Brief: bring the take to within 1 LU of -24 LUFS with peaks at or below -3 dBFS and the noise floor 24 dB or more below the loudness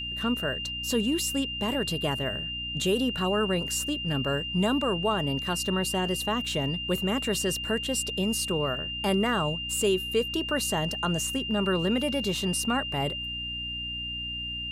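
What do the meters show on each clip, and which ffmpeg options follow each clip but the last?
hum 60 Hz; highest harmonic 300 Hz; hum level -39 dBFS; steady tone 2.8 kHz; tone level -32 dBFS; loudness -27.5 LUFS; peak level -14.0 dBFS; loudness target -24.0 LUFS
-> -af "bandreject=f=60:t=h:w=4,bandreject=f=120:t=h:w=4,bandreject=f=180:t=h:w=4,bandreject=f=240:t=h:w=4,bandreject=f=300:t=h:w=4"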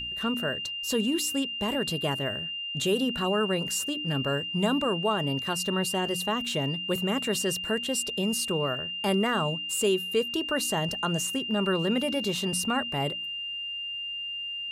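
hum not found; steady tone 2.8 kHz; tone level -32 dBFS
-> -af "bandreject=f=2800:w=30"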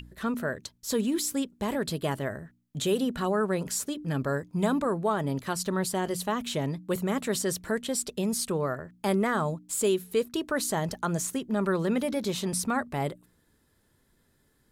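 steady tone not found; loudness -29.5 LUFS; peak level -14.0 dBFS; loudness target -24.0 LUFS
-> -af "volume=1.88"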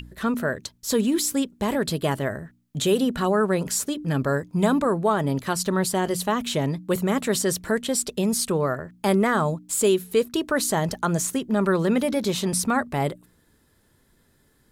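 loudness -24.0 LUFS; peak level -8.5 dBFS; noise floor -63 dBFS

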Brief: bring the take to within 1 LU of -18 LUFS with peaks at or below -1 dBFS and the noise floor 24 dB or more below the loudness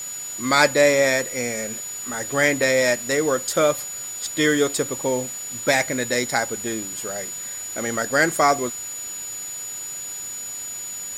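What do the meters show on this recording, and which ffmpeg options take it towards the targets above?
steady tone 6.9 kHz; tone level -30 dBFS; noise floor -32 dBFS; noise floor target -46 dBFS; loudness -22.0 LUFS; peak level -1.5 dBFS; loudness target -18.0 LUFS
-> -af "bandreject=f=6900:w=30"
-af "afftdn=nr=14:nf=-32"
-af "volume=1.58,alimiter=limit=0.891:level=0:latency=1"

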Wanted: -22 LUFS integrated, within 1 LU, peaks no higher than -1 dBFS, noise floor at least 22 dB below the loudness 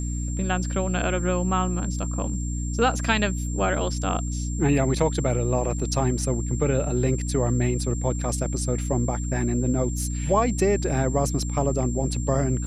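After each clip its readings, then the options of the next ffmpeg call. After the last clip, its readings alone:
hum 60 Hz; highest harmonic 300 Hz; hum level -26 dBFS; steady tone 7.4 kHz; tone level -37 dBFS; loudness -25.0 LUFS; peak level -5.0 dBFS; loudness target -22.0 LUFS
-> -af "bandreject=f=60:t=h:w=6,bandreject=f=120:t=h:w=6,bandreject=f=180:t=h:w=6,bandreject=f=240:t=h:w=6,bandreject=f=300:t=h:w=6"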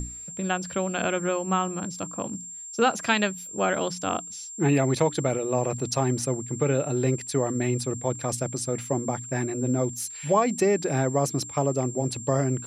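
hum not found; steady tone 7.4 kHz; tone level -37 dBFS
-> -af "bandreject=f=7400:w=30"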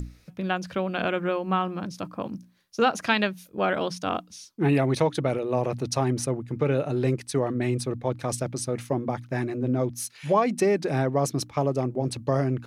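steady tone not found; loudness -26.5 LUFS; peak level -6.0 dBFS; loudness target -22.0 LUFS
-> -af "volume=1.68"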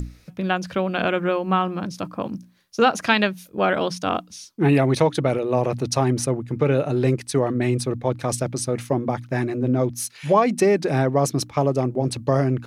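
loudness -22.0 LUFS; peak level -1.5 dBFS; noise floor -51 dBFS

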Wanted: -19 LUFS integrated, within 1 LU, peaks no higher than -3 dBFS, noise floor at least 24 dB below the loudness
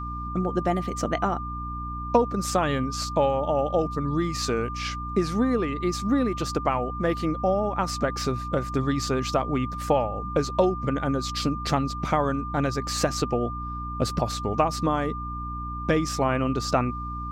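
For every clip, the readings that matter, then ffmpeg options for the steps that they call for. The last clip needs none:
hum 60 Hz; highest harmonic 300 Hz; hum level -32 dBFS; steady tone 1.2 kHz; tone level -33 dBFS; loudness -26.0 LUFS; peak level -6.0 dBFS; loudness target -19.0 LUFS
-> -af "bandreject=f=60:t=h:w=4,bandreject=f=120:t=h:w=4,bandreject=f=180:t=h:w=4,bandreject=f=240:t=h:w=4,bandreject=f=300:t=h:w=4"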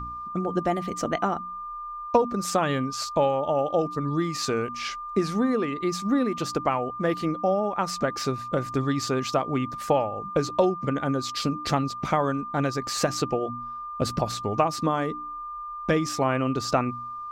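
hum not found; steady tone 1.2 kHz; tone level -33 dBFS
-> -af "bandreject=f=1200:w=30"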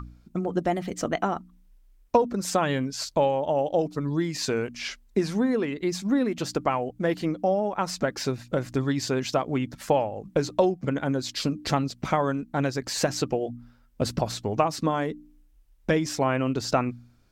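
steady tone not found; loudness -27.0 LUFS; peak level -6.5 dBFS; loudness target -19.0 LUFS
-> -af "volume=2.51,alimiter=limit=0.708:level=0:latency=1"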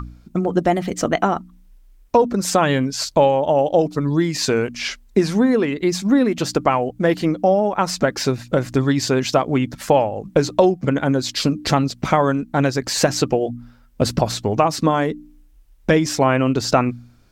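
loudness -19.0 LUFS; peak level -3.0 dBFS; noise floor -51 dBFS

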